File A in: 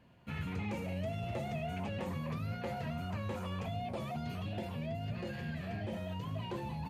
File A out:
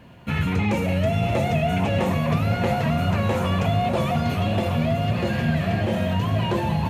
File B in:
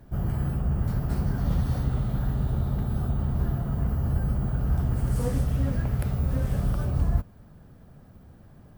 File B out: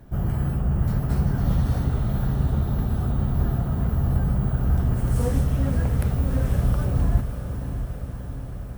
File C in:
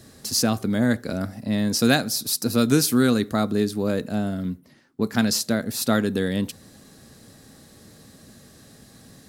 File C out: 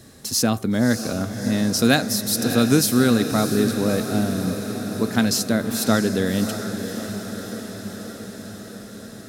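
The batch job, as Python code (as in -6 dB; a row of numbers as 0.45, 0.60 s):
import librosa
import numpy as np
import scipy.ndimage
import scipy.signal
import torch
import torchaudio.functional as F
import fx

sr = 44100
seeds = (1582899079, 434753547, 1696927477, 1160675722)

p1 = fx.notch(x, sr, hz=4700.0, q=17.0)
p2 = p1 + fx.echo_diffused(p1, sr, ms=629, feedback_pct=69, wet_db=-9.0, dry=0)
y = p2 * 10.0 ** (-22 / 20.0) / np.sqrt(np.mean(np.square(p2)))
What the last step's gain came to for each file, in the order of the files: +16.0, +3.0, +1.5 dB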